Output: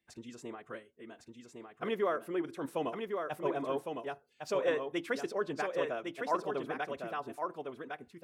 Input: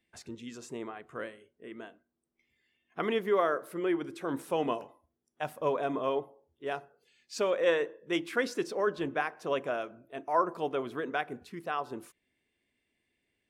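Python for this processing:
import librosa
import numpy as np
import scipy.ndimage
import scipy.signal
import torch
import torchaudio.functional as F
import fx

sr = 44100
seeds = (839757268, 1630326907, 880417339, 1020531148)

p1 = fx.stretch_vocoder(x, sr, factor=0.61)
p2 = p1 + fx.echo_single(p1, sr, ms=1107, db=-5.0, dry=0)
y = p2 * 10.0 ** (-3.5 / 20.0)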